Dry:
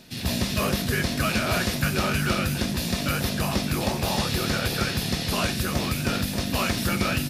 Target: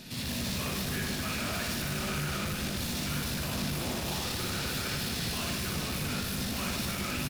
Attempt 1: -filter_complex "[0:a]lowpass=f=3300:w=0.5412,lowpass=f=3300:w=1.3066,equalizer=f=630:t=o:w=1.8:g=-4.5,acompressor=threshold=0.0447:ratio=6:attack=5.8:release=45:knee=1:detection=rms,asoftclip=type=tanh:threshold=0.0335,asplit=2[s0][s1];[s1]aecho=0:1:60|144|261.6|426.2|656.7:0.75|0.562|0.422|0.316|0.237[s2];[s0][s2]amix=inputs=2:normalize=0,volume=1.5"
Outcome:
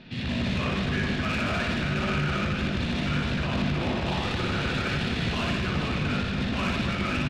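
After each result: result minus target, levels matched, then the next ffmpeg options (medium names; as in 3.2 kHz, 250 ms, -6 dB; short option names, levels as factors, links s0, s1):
saturation: distortion -6 dB; 4 kHz band -3.5 dB
-filter_complex "[0:a]lowpass=f=3300:w=0.5412,lowpass=f=3300:w=1.3066,equalizer=f=630:t=o:w=1.8:g=-4.5,acompressor=threshold=0.0447:ratio=6:attack=5.8:release=45:knee=1:detection=rms,asoftclip=type=tanh:threshold=0.0119,asplit=2[s0][s1];[s1]aecho=0:1:60|144|261.6|426.2|656.7:0.75|0.562|0.422|0.316|0.237[s2];[s0][s2]amix=inputs=2:normalize=0,volume=1.5"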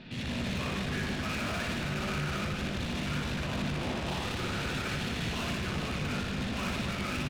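4 kHz band -2.0 dB
-filter_complex "[0:a]equalizer=f=630:t=o:w=1.8:g=-4.5,acompressor=threshold=0.0447:ratio=6:attack=5.8:release=45:knee=1:detection=rms,asoftclip=type=tanh:threshold=0.0119,asplit=2[s0][s1];[s1]aecho=0:1:60|144|261.6|426.2|656.7:0.75|0.562|0.422|0.316|0.237[s2];[s0][s2]amix=inputs=2:normalize=0,volume=1.5"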